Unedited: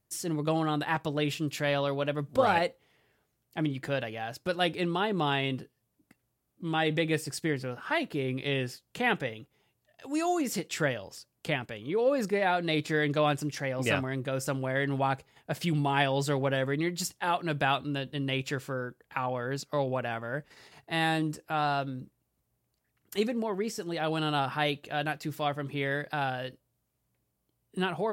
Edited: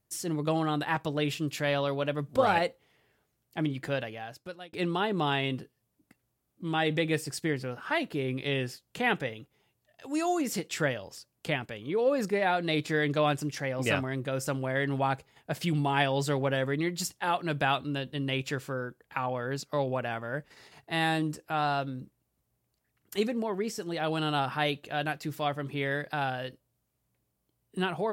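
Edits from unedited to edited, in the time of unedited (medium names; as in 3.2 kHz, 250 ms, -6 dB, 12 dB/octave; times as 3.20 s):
3.93–4.73 s: fade out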